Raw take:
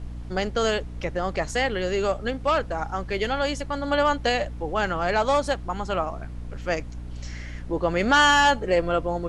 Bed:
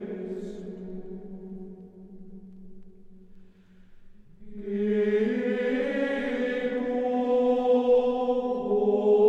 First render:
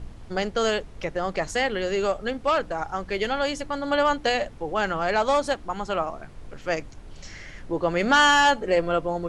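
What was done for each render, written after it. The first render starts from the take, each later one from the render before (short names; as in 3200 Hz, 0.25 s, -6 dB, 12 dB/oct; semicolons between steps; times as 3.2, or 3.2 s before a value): de-hum 60 Hz, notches 5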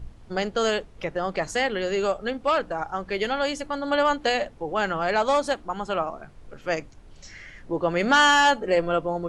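noise print and reduce 6 dB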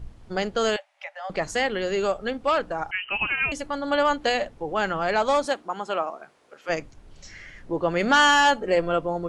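0.76–1.3 rippled Chebyshev high-pass 560 Hz, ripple 9 dB; 2.91–3.52 inverted band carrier 3000 Hz; 5.45–6.68 HPF 180 Hz -> 560 Hz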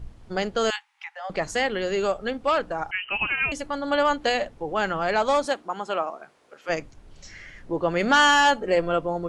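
0.7–1.16 brick-wall FIR high-pass 790 Hz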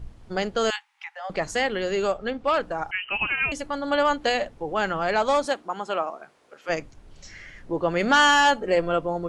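2.13–2.54 air absorption 70 m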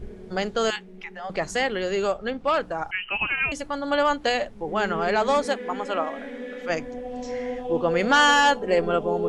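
add bed -7.5 dB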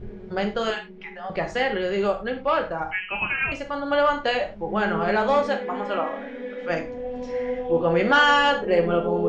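air absorption 170 m; non-linear reverb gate 0.13 s falling, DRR 3 dB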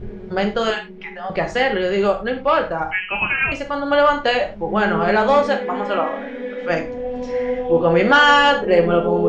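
gain +5.5 dB; limiter -2 dBFS, peak gain reduction 1.5 dB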